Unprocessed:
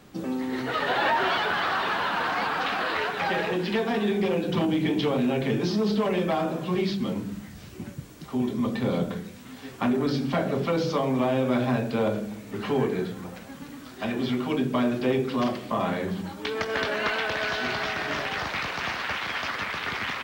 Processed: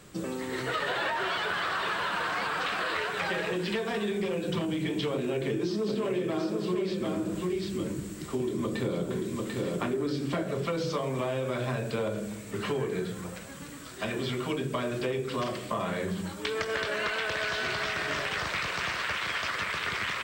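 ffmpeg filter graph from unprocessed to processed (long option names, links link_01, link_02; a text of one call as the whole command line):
ffmpeg -i in.wav -filter_complex "[0:a]asettb=1/sr,asplit=3[link_01][link_02][link_03];[link_01]atrim=end=5.144[link_04];[link_02]atrim=start=5.14:end=10.43,asetpts=PTS-STARTPTS,afade=type=in:duration=0.004:curve=qsin,afade=type=out:start_time=5.286:duration=0.004:curve=qsin,equalizer=frequency=330:width_type=o:width=0.61:gain=10,aecho=1:1:742:0.531,atrim=end_sample=233289[link_05];[link_03]atrim=start=10.426[link_06];[link_04][link_05]acrossfade=duration=0.004:curve1=hsin:curve2=qsin[link_07];[link_07][link_06]acrossfade=duration=0.004:curve1=qsin:curve2=hsin,equalizer=frequency=250:width_type=o:width=0.33:gain=-11,equalizer=frequency=800:width_type=o:width=0.33:gain=-8,equalizer=frequency=8000:width_type=o:width=0.33:gain=11,acompressor=threshold=-28dB:ratio=6,volume=1dB" out.wav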